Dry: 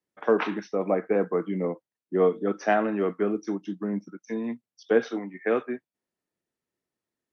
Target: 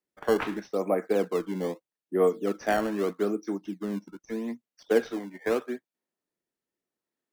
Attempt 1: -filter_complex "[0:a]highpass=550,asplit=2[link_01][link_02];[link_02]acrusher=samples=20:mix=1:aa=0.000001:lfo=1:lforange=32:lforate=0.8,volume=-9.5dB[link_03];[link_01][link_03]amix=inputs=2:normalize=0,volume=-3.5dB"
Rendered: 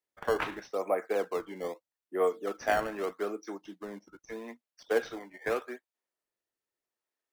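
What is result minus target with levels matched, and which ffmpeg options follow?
250 Hz band −6.5 dB
-filter_complex "[0:a]highpass=180,asplit=2[link_01][link_02];[link_02]acrusher=samples=20:mix=1:aa=0.000001:lfo=1:lforange=32:lforate=0.8,volume=-9.5dB[link_03];[link_01][link_03]amix=inputs=2:normalize=0,volume=-3.5dB"

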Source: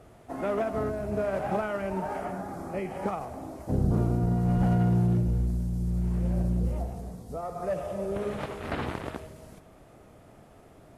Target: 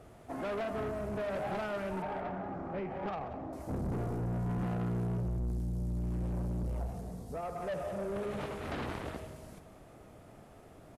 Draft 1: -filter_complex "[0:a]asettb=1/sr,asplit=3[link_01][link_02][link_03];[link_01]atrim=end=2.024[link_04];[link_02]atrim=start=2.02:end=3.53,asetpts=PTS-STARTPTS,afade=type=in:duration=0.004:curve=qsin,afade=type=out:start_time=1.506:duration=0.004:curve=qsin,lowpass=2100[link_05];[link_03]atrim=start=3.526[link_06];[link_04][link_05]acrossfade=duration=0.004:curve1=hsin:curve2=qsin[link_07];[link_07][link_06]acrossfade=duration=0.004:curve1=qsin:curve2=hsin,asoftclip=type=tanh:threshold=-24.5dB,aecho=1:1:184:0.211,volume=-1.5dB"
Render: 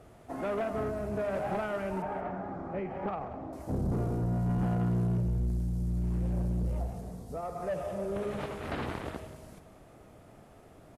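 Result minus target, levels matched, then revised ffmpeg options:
soft clipping: distortion −5 dB
-filter_complex "[0:a]asettb=1/sr,asplit=3[link_01][link_02][link_03];[link_01]atrim=end=2.024[link_04];[link_02]atrim=start=2.02:end=3.53,asetpts=PTS-STARTPTS,afade=type=in:duration=0.004:curve=qsin,afade=type=out:start_time=1.506:duration=0.004:curve=qsin,lowpass=2100[link_05];[link_03]atrim=start=3.526[link_06];[link_04][link_05]acrossfade=duration=0.004:curve1=hsin:curve2=qsin[link_07];[link_07][link_06]acrossfade=duration=0.004:curve1=qsin:curve2=hsin,asoftclip=type=tanh:threshold=-31dB,aecho=1:1:184:0.211,volume=-1.5dB"

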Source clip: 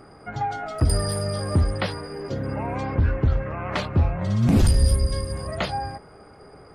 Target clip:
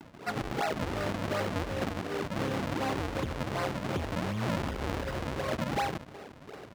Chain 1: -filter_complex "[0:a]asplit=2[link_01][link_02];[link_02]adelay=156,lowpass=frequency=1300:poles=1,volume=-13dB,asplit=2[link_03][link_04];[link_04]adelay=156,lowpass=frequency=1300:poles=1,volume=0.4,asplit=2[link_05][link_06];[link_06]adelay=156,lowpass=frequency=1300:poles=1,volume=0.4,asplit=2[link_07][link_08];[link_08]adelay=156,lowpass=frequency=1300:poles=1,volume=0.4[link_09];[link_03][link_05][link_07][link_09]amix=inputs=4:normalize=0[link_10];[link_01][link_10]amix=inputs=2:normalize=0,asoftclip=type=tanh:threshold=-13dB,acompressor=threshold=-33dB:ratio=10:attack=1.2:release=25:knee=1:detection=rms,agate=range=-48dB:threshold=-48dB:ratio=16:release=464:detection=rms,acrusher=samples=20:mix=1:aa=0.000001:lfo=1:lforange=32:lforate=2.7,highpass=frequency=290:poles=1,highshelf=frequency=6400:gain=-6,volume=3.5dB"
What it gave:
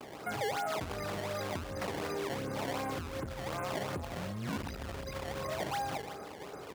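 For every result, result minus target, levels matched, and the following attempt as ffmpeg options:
downward compressor: peak gain reduction +6.5 dB; 8,000 Hz band +5.0 dB; sample-and-hold swept by an LFO: distortion −5 dB
-filter_complex "[0:a]asplit=2[link_01][link_02];[link_02]adelay=156,lowpass=frequency=1300:poles=1,volume=-13dB,asplit=2[link_03][link_04];[link_04]adelay=156,lowpass=frequency=1300:poles=1,volume=0.4,asplit=2[link_05][link_06];[link_06]adelay=156,lowpass=frequency=1300:poles=1,volume=0.4,asplit=2[link_07][link_08];[link_08]adelay=156,lowpass=frequency=1300:poles=1,volume=0.4[link_09];[link_03][link_05][link_07][link_09]amix=inputs=4:normalize=0[link_10];[link_01][link_10]amix=inputs=2:normalize=0,asoftclip=type=tanh:threshold=-13dB,acompressor=threshold=-26dB:ratio=10:attack=1.2:release=25:knee=1:detection=rms,agate=range=-48dB:threshold=-48dB:ratio=16:release=464:detection=rms,acrusher=samples=20:mix=1:aa=0.000001:lfo=1:lforange=32:lforate=2.7,highpass=frequency=290:poles=1,highshelf=frequency=6400:gain=-6,volume=3.5dB"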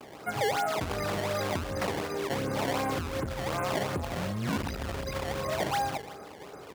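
8,000 Hz band +4.5 dB; sample-and-hold swept by an LFO: distortion −6 dB
-filter_complex "[0:a]asplit=2[link_01][link_02];[link_02]adelay=156,lowpass=frequency=1300:poles=1,volume=-13dB,asplit=2[link_03][link_04];[link_04]adelay=156,lowpass=frequency=1300:poles=1,volume=0.4,asplit=2[link_05][link_06];[link_06]adelay=156,lowpass=frequency=1300:poles=1,volume=0.4,asplit=2[link_07][link_08];[link_08]adelay=156,lowpass=frequency=1300:poles=1,volume=0.4[link_09];[link_03][link_05][link_07][link_09]amix=inputs=4:normalize=0[link_10];[link_01][link_10]amix=inputs=2:normalize=0,asoftclip=type=tanh:threshold=-13dB,acompressor=threshold=-26dB:ratio=10:attack=1.2:release=25:knee=1:detection=rms,agate=range=-48dB:threshold=-48dB:ratio=16:release=464:detection=rms,acrusher=samples=20:mix=1:aa=0.000001:lfo=1:lforange=32:lforate=2.7,highpass=frequency=290:poles=1,highshelf=frequency=6400:gain=-14,volume=3.5dB"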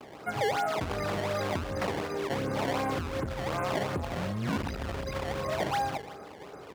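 sample-and-hold swept by an LFO: distortion −6 dB
-filter_complex "[0:a]asplit=2[link_01][link_02];[link_02]adelay=156,lowpass=frequency=1300:poles=1,volume=-13dB,asplit=2[link_03][link_04];[link_04]adelay=156,lowpass=frequency=1300:poles=1,volume=0.4,asplit=2[link_05][link_06];[link_06]adelay=156,lowpass=frequency=1300:poles=1,volume=0.4,asplit=2[link_07][link_08];[link_08]adelay=156,lowpass=frequency=1300:poles=1,volume=0.4[link_09];[link_03][link_05][link_07][link_09]amix=inputs=4:normalize=0[link_10];[link_01][link_10]amix=inputs=2:normalize=0,asoftclip=type=tanh:threshold=-13dB,acompressor=threshold=-26dB:ratio=10:attack=1.2:release=25:knee=1:detection=rms,agate=range=-48dB:threshold=-48dB:ratio=16:release=464:detection=rms,acrusher=samples=65:mix=1:aa=0.000001:lfo=1:lforange=104:lforate=2.7,highpass=frequency=290:poles=1,highshelf=frequency=6400:gain=-14,volume=3.5dB"

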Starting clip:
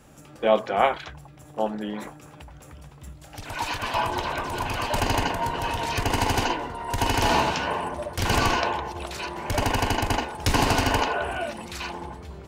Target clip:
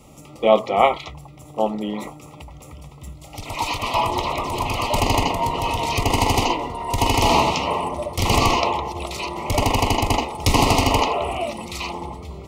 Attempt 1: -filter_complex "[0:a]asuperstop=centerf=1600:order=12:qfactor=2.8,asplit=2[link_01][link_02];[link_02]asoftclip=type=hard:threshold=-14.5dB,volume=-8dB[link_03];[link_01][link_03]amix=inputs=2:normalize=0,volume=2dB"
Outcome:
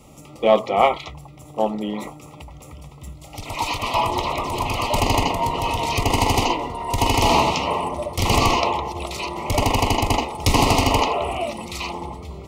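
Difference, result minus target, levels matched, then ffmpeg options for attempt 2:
hard clipping: distortion +27 dB
-filter_complex "[0:a]asuperstop=centerf=1600:order=12:qfactor=2.8,asplit=2[link_01][link_02];[link_02]asoftclip=type=hard:threshold=-7dB,volume=-8dB[link_03];[link_01][link_03]amix=inputs=2:normalize=0,volume=2dB"

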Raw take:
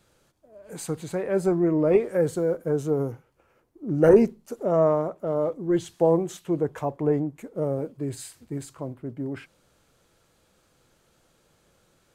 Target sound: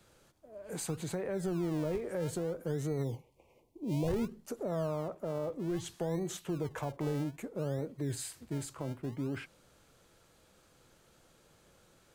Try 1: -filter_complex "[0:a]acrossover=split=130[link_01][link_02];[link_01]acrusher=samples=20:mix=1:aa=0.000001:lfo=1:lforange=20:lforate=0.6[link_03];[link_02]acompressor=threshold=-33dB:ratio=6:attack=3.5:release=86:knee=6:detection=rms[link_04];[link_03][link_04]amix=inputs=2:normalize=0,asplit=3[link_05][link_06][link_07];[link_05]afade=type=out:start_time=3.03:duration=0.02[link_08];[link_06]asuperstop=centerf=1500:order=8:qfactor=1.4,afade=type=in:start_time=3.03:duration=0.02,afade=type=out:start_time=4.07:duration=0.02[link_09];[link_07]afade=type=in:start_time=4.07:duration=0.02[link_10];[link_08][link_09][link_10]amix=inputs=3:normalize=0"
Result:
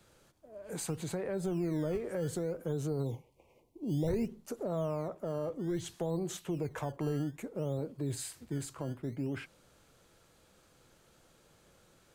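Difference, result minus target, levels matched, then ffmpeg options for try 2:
sample-and-hold swept by an LFO: distortion −7 dB
-filter_complex "[0:a]acrossover=split=130[link_01][link_02];[link_01]acrusher=samples=42:mix=1:aa=0.000001:lfo=1:lforange=42:lforate=0.6[link_03];[link_02]acompressor=threshold=-33dB:ratio=6:attack=3.5:release=86:knee=6:detection=rms[link_04];[link_03][link_04]amix=inputs=2:normalize=0,asplit=3[link_05][link_06][link_07];[link_05]afade=type=out:start_time=3.03:duration=0.02[link_08];[link_06]asuperstop=centerf=1500:order=8:qfactor=1.4,afade=type=in:start_time=3.03:duration=0.02,afade=type=out:start_time=4.07:duration=0.02[link_09];[link_07]afade=type=in:start_time=4.07:duration=0.02[link_10];[link_08][link_09][link_10]amix=inputs=3:normalize=0"

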